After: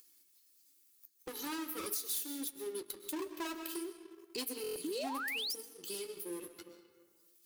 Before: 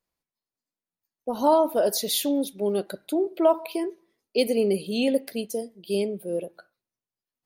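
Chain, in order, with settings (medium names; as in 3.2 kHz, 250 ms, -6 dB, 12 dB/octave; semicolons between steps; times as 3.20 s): comb filter that takes the minimum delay 2.3 ms; resonant low shelf 440 Hz +13.5 dB, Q 3; hum notches 60/120/180/240/300/360/420 Hz; hard clipper -7.5 dBFS, distortion -13 dB; differentiator; reverberation RT60 0.95 s, pre-delay 85 ms, DRR 11.5 dB; flange 0.41 Hz, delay 6.4 ms, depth 5.6 ms, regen -44%; upward compressor, threshold -42 dBFS; painted sound rise, 4.84–5.55 s, 280–5900 Hz -39 dBFS; waveshaping leveller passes 1; compression 4:1, threshold -37 dBFS, peak gain reduction 10.5 dB; buffer glitch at 4.62 s, samples 1024, times 5; trim +1 dB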